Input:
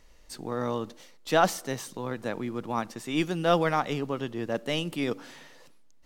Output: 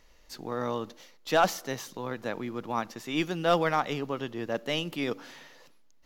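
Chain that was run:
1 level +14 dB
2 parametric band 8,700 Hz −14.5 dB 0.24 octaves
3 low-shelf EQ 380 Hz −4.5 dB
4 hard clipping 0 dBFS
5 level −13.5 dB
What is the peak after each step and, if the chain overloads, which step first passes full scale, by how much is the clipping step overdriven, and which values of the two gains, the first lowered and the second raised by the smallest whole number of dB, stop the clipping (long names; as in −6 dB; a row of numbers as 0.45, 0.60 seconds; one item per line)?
+5.5, +5.5, +5.0, 0.0, −13.5 dBFS
step 1, 5.0 dB
step 1 +9 dB, step 5 −8.5 dB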